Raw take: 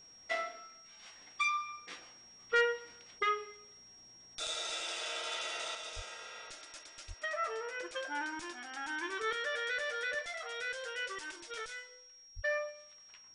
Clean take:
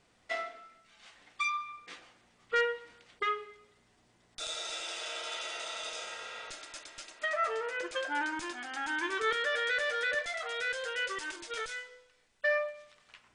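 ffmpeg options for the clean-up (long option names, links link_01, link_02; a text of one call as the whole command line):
ffmpeg -i in.wav -filter_complex "[0:a]bandreject=frequency=5600:width=30,asplit=3[link_01][link_02][link_03];[link_01]afade=type=out:start_time=5.95:duration=0.02[link_04];[link_02]highpass=frequency=140:width=0.5412,highpass=frequency=140:width=1.3066,afade=type=in:start_time=5.95:duration=0.02,afade=type=out:start_time=6.07:duration=0.02[link_05];[link_03]afade=type=in:start_time=6.07:duration=0.02[link_06];[link_04][link_05][link_06]amix=inputs=3:normalize=0,asplit=3[link_07][link_08][link_09];[link_07]afade=type=out:start_time=7.07:duration=0.02[link_10];[link_08]highpass=frequency=140:width=0.5412,highpass=frequency=140:width=1.3066,afade=type=in:start_time=7.07:duration=0.02,afade=type=out:start_time=7.19:duration=0.02[link_11];[link_09]afade=type=in:start_time=7.19:duration=0.02[link_12];[link_10][link_11][link_12]amix=inputs=3:normalize=0,asplit=3[link_13][link_14][link_15];[link_13]afade=type=out:start_time=12.35:duration=0.02[link_16];[link_14]highpass=frequency=140:width=0.5412,highpass=frequency=140:width=1.3066,afade=type=in:start_time=12.35:duration=0.02,afade=type=out:start_time=12.47:duration=0.02[link_17];[link_15]afade=type=in:start_time=12.47:duration=0.02[link_18];[link_16][link_17][link_18]amix=inputs=3:normalize=0,asetnsamples=nb_out_samples=441:pad=0,asendcmd='5.75 volume volume 5dB',volume=0dB" out.wav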